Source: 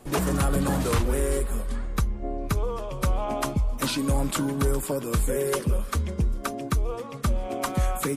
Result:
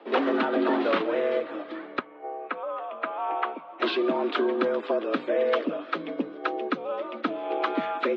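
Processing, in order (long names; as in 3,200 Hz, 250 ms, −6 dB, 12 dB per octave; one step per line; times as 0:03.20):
single-sideband voice off tune +90 Hz 170–3,600 Hz
0:01.99–0:03.80: three-way crossover with the lows and the highs turned down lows −17 dB, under 530 Hz, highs −24 dB, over 2,800 Hz
level +2.5 dB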